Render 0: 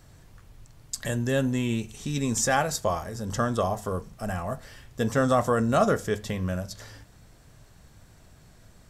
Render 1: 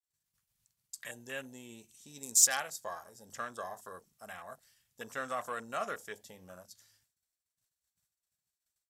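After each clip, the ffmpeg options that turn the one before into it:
ffmpeg -i in.wav -af "afwtdn=0.0158,agate=range=-33dB:threshold=-46dB:ratio=3:detection=peak,aderivative,volume=5dB" out.wav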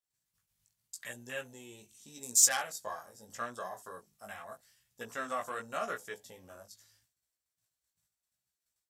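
ffmpeg -i in.wav -af "flanger=delay=16:depth=3.7:speed=0.82,volume=3.5dB" out.wav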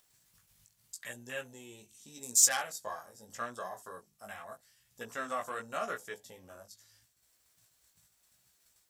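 ffmpeg -i in.wav -af "acompressor=mode=upward:threshold=-54dB:ratio=2.5" out.wav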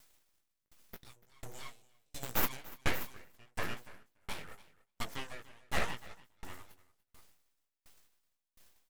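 ffmpeg -i in.wav -af "aeval=exprs='abs(val(0))':channel_layout=same,aecho=1:1:290|580|870:0.596|0.119|0.0238,aeval=exprs='val(0)*pow(10,-37*if(lt(mod(1.4*n/s,1),2*abs(1.4)/1000),1-mod(1.4*n/s,1)/(2*abs(1.4)/1000),(mod(1.4*n/s,1)-2*abs(1.4)/1000)/(1-2*abs(1.4)/1000))/20)':channel_layout=same,volume=9dB" out.wav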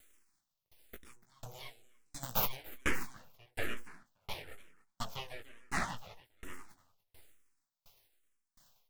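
ffmpeg -i in.wav -filter_complex "[0:a]asplit=2[link_01][link_02];[link_02]afreqshift=-1.1[link_03];[link_01][link_03]amix=inputs=2:normalize=1,volume=2.5dB" out.wav

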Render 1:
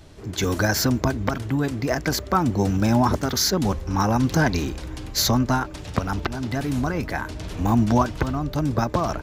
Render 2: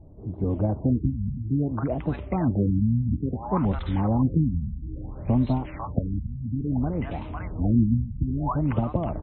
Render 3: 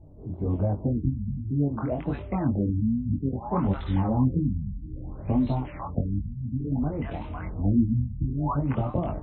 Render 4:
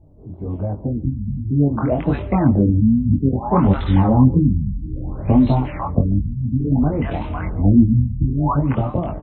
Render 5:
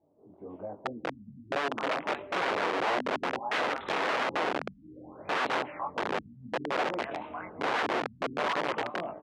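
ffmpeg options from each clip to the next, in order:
ffmpeg -i in.wav -filter_complex "[0:a]equalizer=frequency=400:width_type=o:width=0.67:gain=-5,equalizer=frequency=1600:width_type=o:width=0.67:gain=-11,equalizer=frequency=4000:width_type=o:width=0.67:gain=-11,acrossover=split=810|5200[link_01][link_02][link_03];[link_03]adelay=250[link_04];[link_02]adelay=500[link_05];[link_01][link_05][link_04]amix=inputs=3:normalize=0,afftfilt=real='re*lt(b*sr/1024,230*pow(4200/230,0.5+0.5*sin(2*PI*0.59*pts/sr)))':imag='im*lt(b*sr/1024,230*pow(4200/230,0.5+0.5*sin(2*PI*0.59*pts/sr)))':win_size=1024:overlap=0.75" out.wav
ffmpeg -i in.wav -af "flanger=delay=20:depth=3.9:speed=1.3,volume=1.5dB" out.wav
ffmpeg -i in.wav -filter_complex "[0:a]dynaudnorm=framelen=540:gausssize=5:maxgain=12dB,asplit=2[link_01][link_02];[link_02]adelay=139.9,volume=-23dB,highshelf=frequency=4000:gain=-3.15[link_03];[link_01][link_03]amix=inputs=2:normalize=0" out.wav
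ffmpeg -i in.wav -af "aeval=exprs='(mod(4.73*val(0)+1,2)-1)/4.73':channel_layout=same,highpass=400,lowpass=2800,volume=-8dB" out.wav

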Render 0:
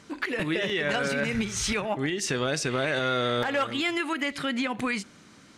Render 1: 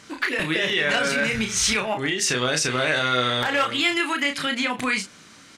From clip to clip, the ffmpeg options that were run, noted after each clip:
ffmpeg -i in.wav -filter_complex "[0:a]tiltshelf=frequency=970:gain=-4,asplit=2[link_01][link_02];[link_02]adelay=32,volume=-5.5dB[link_03];[link_01][link_03]amix=inputs=2:normalize=0,volume=3.5dB" out.wav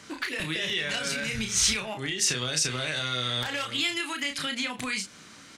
ffmpeg -i in.wav -filter_complex "[0:a]acrossover=split=150|3000[link_01][link_02][link_03];[link_02]acompressor=threshold=-33dB:ratio=4[link_04];[link_01][link_04][link_03]amix=inputs=3:normalize=0,volume=-1dB" out.wav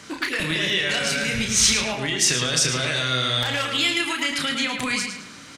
ffmpeg -i in.wav -filter_complex "[0:a]asplit=2[link_01][link_02];[link_02]adelay=109,lowpass=frequency=4700:poles=1,volume=-5dB,asplit=2[link_03][link_04];[link_04]adelay=109,lowpass=frequency=4700:poles=1,volume=0.43,asplit=2[link_05][link_06];[link_06]adelay=109,lowpass=frequency=4700:poles=1,volume=0.43,asplit=2[link_07][link_08];[link_08]adelay=109,lowpass=frequency=4700:poles=1,volume=0.43,asplit=2[link_09][link_10];[link_10]adelay=109,lowpass=frequency=4700:poles=1,volume=0.43[link_11];[link_01][link_03][link_05][link_07][link_09][link_11]amix=inputs=6:normalize=0,volume=5.5dB" out.wav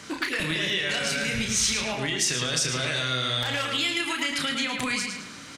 ffmpeg -i in.wav -af "acompressor=threshold=-26dB:ratio=2" out.wav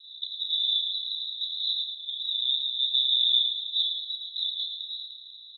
ffmpeg -i in.wav -af "asuperpass=centerf=3700:order=12:qfactor=7,volume=8.5dB" out.wav

